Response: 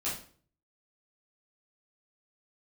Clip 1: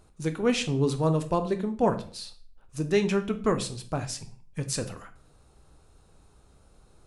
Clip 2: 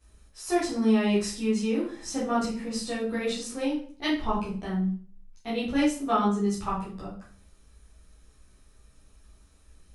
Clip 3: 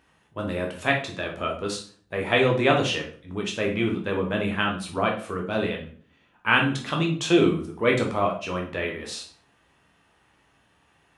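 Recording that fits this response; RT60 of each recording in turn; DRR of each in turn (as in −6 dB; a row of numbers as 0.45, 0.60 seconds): 2; 0.45, 0.45, 0.45 seconds; 7.5, −9.5, −0.5 decibels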